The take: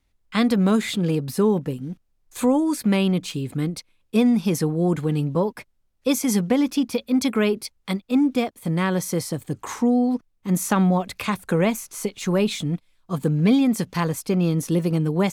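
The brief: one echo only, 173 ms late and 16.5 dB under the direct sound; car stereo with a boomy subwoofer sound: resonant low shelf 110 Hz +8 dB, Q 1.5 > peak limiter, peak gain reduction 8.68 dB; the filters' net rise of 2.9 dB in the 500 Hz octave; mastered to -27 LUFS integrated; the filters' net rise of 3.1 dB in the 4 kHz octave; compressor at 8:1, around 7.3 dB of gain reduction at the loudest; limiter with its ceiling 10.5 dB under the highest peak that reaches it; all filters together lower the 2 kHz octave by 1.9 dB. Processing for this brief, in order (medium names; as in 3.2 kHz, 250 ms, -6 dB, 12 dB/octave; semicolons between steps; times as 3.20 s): peaking EQ 500 Hz +4 dB; peaking EQ 2 kHz -4 dB; peaking EQ 4 kHz +5 dB; compression 8:1, threshold -20 dBFS; peak limiter -20.5 dBFS; resonant low shelf 110 Hz +8 dB, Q 1.5; delay 173 ms -16.5 dB; trim +8 dB; peak limiter -19 dBFS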